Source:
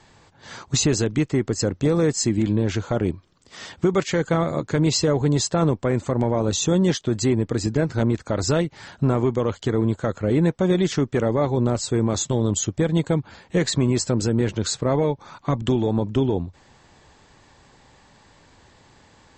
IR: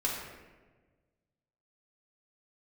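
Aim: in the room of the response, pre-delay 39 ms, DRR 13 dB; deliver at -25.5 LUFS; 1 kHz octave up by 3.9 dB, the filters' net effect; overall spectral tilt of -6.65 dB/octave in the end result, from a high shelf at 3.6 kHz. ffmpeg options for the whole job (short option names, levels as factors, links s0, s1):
-filter_complex "[0:a]equalizer=f=1000:t=o:g=5.5,highshelf=f=3600:g=-5,asplit=2[s0][s1];[1:a]atrim=start_sample=2205,adelay=39[s2];[s1][s2]afir=irnorm=-1:irlink=0,volume=0.106[s3];[s0][s3]amix=inputs=2:normalize=0,volume=0.668"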